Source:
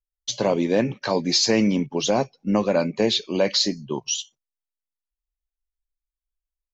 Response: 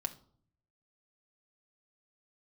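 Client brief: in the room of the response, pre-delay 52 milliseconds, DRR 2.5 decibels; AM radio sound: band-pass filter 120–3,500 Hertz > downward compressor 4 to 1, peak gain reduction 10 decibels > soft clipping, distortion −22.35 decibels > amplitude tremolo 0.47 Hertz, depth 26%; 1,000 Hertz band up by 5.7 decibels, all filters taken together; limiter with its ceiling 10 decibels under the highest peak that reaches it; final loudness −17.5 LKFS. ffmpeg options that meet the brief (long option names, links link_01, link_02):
-filter_complex "[0:a]equalizer=frequency=1000:width_type=o:gain=7.5,alimiter=limit=-14.5dB:level=0:latency=1,asplit=2[link_01][link_02];[1:a]atrim=start_sample=2205,adelay=52[link_03];[link_02][link_03]afir=irnorm=-1:irlink=0,volume=-3dB[link_04];[link_01][link_04]amix=inputs=2:normalize=0,highpass=120,lowpass=3500,acompressor=threshold=-28dB:ratio=4,asoftclip=threshold=-20.5dB,tremolo=f=0.47:d=0.26,volume=16dB"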